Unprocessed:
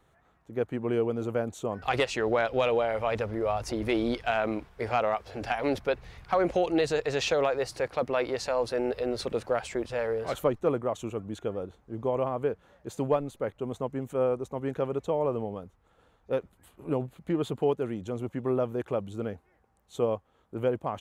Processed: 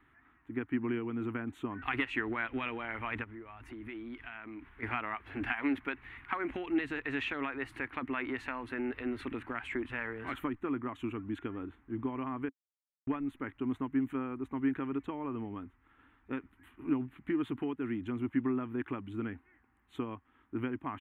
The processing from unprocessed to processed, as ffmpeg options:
-filter_complex "[0:a]asplit=3[s0][s1][s2];[s0]afade=t=out:st=3.23:d=0.02[s3];[s1]acompressor=threshold=0.00631:ratio=4:attack=3.2:release=140:knee=1:detection=peak,afade=t=in:st=3.23:d=0.02,afade=t=out:st=4.82:d=0.02[s4];[s2]afade=t=in:st=4.82:d=0.02[s5];[s3][s4][s5]amix=inputs=3:normalize=0,asettb=1/sr,asplit=3[s6][s7][s8];[s6]atrim=end=5.524[s9];[s7]atrim=start=5.52:end=6.5,asetpts=PTS-STARTPTS,afade=t=in:d=0.004:c=qsin,afade=t=out:st=0.976:d=0.004:c=qsin,lowshelf=f=150:g=-9[s10];[s8]atrim=start=6.496[s11];[s9][s10]acrossfade=d=0.004:c1=hsin:c2=qsin[s12];[s12][s11]acrossfade=d=0.004:c1=qsin:c2=hsin,asplit=3[s13][s14][s15];[s13]atrim=end=12.49,asetpts=PTS-STARTPTS,afade=t=out:st=12.486:d=0.004:c=hsin[s16];[s14]atrim=start=12.49:end=13.07,asetpts=PTS-STARTPTS,volume=0[s17];[s15]atrim=start=13.07,asetpts=PTS-STARTPTS,afade=t=in:d=0.004:c=hsin[s18];[s16][s17][s18]concat=n=3:v=0:a=1,highshelf=f=4300:g=10.5,acompressor=threshold=0.0316:ratio=3,firequalizer=gain_entry='entry(120,0);entry(170,-7);entry(270,12);entry(510,-16);entry(960,2);entry(1900,9);entry(3000,-1);entry(5000,-29);entry(9900,-19)':delay=0.05:min_phase=1,volume=0.708"

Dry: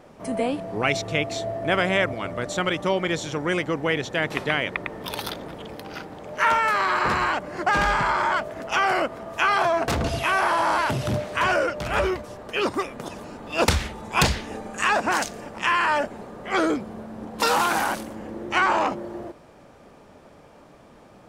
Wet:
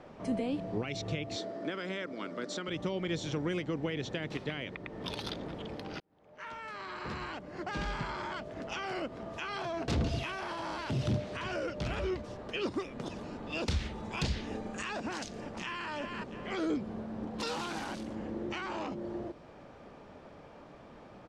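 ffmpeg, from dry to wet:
-filter_complex "[0:a]asettb=1/sr,asplit=3[s0][s1][s2];[s0]atrim=end=1.364[s3];[s1]atrim=start=1.36:end=2.68,asetpts=PTS-STARTPTS,afade=t=in:d=0.004:c=qsin,afade=t=out:st=1.316:d=0.004:c=qsin,highpass=f=210:w=0.5412,highpass=f=210:w=1.3066,equalizer=f=730:t=q:w=4:g=-6,equalizer=f=1400:t=q:w=4:g=5,equalizer=f=2700:t=q:w=4:g=-4,equalizer=f=4900:t=q:w=4:g=5,lowpass=f=9800:w=0.5412,lowpass=f=9800:w=1.3066[s4];[s2]atrim=start=2.676[s5];[s3][s4]acrossfade=d=0.004:c1=hsin:c2=qsin[s6];[s6][s5]acrossfade=d=0.004:c1=qsin:c2=hsin,asplit=2[s7][s8];[s8]afade=t=in:st=15.23:d=0.01,afade=t=out:st=15.89:d=0.01,aecho=0:1:340|680|1020:0.354813|0.0709627|0.0141925[s9];[s7][s9]amix=inputs=2:normalize=0,asplit=2[s10][s11];[s10]atrim=end=6,asetpts=PTS-STARTPTS,afade=t=out:st=5.996:d=0.004:c=hsin[s12];[s11]atrim=start=6,asetpts=PTS-STARTPTS,afade=t=in:d=2.9[s13];[s12][s13]concat=n=2:v=0:a=1,lowpass=4700,alimiter=limit=0.126:level=0:latency=1:release=206,acrossover=split=430|3000[s14][s15][s16];[s15]acompressor=threshold=0.00398:ratio=2[s17];[s14][s17][s16]amix=inputs=3:normalize=0,volume=0.794"

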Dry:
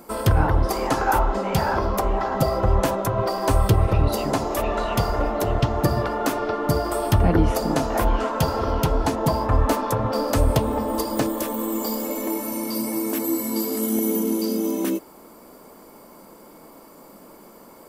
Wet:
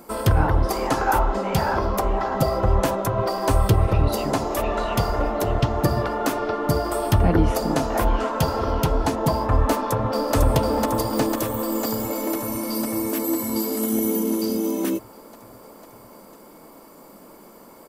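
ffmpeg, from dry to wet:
-filter_complex "[0:a]asplit=2[s0][s1];[s1]afade=t=in:st=9.8:d=0.01,afade=t=out:st=10.35:d=0.01,aecho=0:1:500|1000|1500|2000|2500|3000|3500|4000|4500|5000|5500|6000:0.749894|0.562421|0.421815|0.316362|0.237271|0.177953|0.133465|0.100099|0.0750741|0.0563056|0.0422292|0.0316719[s2];[s0][s2]amix=inputs=2:normalize=0"

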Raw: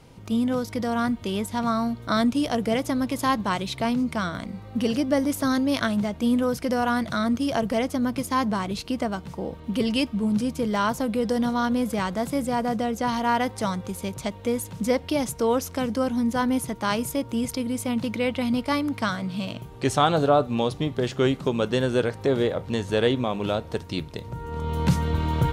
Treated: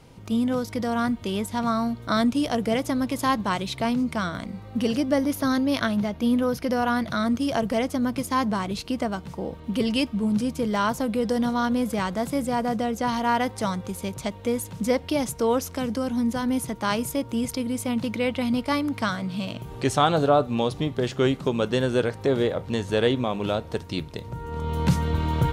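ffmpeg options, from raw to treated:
-filter_complex "[0:a]asettb=1/sr,asplit=3[s0][s1][s2];[s0]atrim=end=5.164[s3];[s1]atrim=start=5.16:end=7.19,asetpts=PTS-STARTPTS,afade=t=in:d=0.004:c=qsin,afade=t=out:st=2.026:d=0.004:c=qsin,equalizer=f=7900:w=3.9:g=-11.5[s4];[s2]atrim=start=7.186[s5];[s3][s4]acrossfade=d=0.004:c1=hsin:c2=qsin[s6];[s6][s5]acrossfade=d=0.004:c1=qsin:c2=hsin,asettb=1/sr,asplit=3[s7][s8][s9];[s7]atrim=end=15.754[s10];[s8]atrim=start=15.75:end=16.76,asetpts=PTS-STARTPTS,afade=t=in:d=0.004:c=qsin,afade=t=out:st=1.006:d=0.004:c=qsin,acrossover=split=270|3000[s11][s12][s13];[s12]acompressor=threshold=0.0562:ratio=6:attack=3.2:release=140:knee=2.83:detection=peak[s14];[s11][s14][s13]amix=inputs=3:normalize=0[s15];[s9]atrim=start=16.756[s16];[s10][s15]acrossfade=d=0.004:c1=hsin:c2=qsin[s17];[s17][s16]acrossfade=d=0.004:c1=qsin:c2=hsin,asettb=1/sr,asplit=3[s18][s19][s20];[s18]atrim=end=18.854[s21];[s19]atrim=start=18.85:end=20.83,asetpts=PTS-STARTPTS,afade=t=in:d=0.004:c=qsin,afade=t=out:st=1.976:d=0.004:c=qsin,acompressor=mode=upward:threshold=0.0355:ratio=2.5:attack=3.2:release=140:knee=2.83:detection=peak[s22];[s20]atrim=start=20.826[s23];[s21][s22]acrossfade=d=0.004:c1=hsin:c2=qsin[s24];[s24][s23]acrossfade=d=0.004:c1=qsin:c2=hsin"

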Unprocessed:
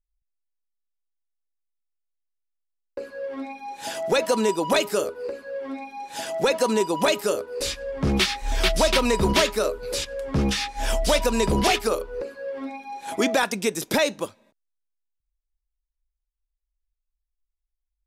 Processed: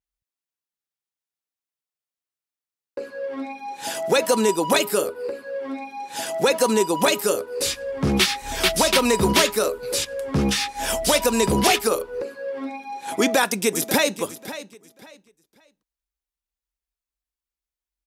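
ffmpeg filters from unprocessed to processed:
-filter_complex "[0:a]asettb=1/sr,asplit=3[s0][s1][s2];[s0]atrim=end=4.814[s3];[s1]atrim=start=4.81:end=5.44,asetpts=PTS-STARTPTS,afade=t=in:d=0.004:c=qsin,afade=t=out:st=0.626:d=0.004:c=qsin,equalizer=f=6300:t=o:w=0.29:g=-7[s4];[s2]atrim=start=5.436[s5];[s3][s4]acrossfade=d=0.004:c1=hsin:c2=qsin[s6];[s6][s5]acrossfade=d=0.004:c1=qsin:c2=hsin,asplit=2[s7][s8];[s8]afade=t=in:st=13.15:d=0.01,afade=t=out:st=14.2:d=0.01,aecho=0:1:540|1080|1620:0.199526|0.0498816|0.0124704[s9];[s7][s9]amix=inputs=2:normalize=0,highpass=86,bandreject=f=620:w=16,adynamicequalizer=threshold=0.00708:dfrequency=7700:dqfactor=0.7:tfrequency=7700:tqfactor=0.7:attack=5:release=100:ratio=0.375:range=4:mode=boostabove:tftype=highshelf,volume=1.33"

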